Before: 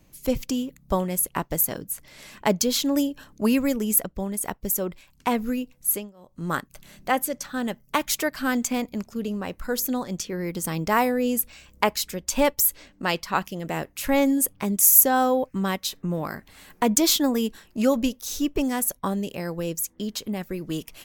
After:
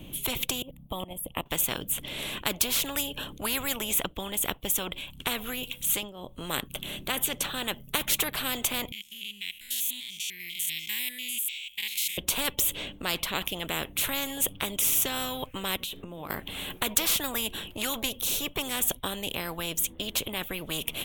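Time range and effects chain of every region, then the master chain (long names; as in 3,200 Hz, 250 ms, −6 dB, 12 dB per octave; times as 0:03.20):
0:00.62–0:01.46: drawn EQ curve 130 Hz 0 dB, 460 Hz +11 dB, 2,500 Hz −8 dB, 9,200 Hz −1 dB + output level in coarse steps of 21 dB + phaser with its sweep stopped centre 1,500 Hz, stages 6
0:05.63–0:06.03: tilt shelving filter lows −5 dB, about 1,300 Hz + notch filter 710 Hz, Q 18 + one half of a high-frequency compander encoder only
0:08.92–0:12.18: spectrum averaged block by block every 100 ms + elliptic high-pass filter 2,100 Hz
0:15.76–0:16.30: mains-hum notches 60/120/180/240/300/360/420/480 Hz + downward compressor 5 to 1, threshold −42 dBFS
whole clip: drawn EQ curve 310 Hz 0 dB, 1,900 Hz −11 dB, 3,300 Hz +9 dB, 4,800 Hz −21 dB, 9,600 Hz −5 dB; every bin compressed towards the loudest bin 4 to 1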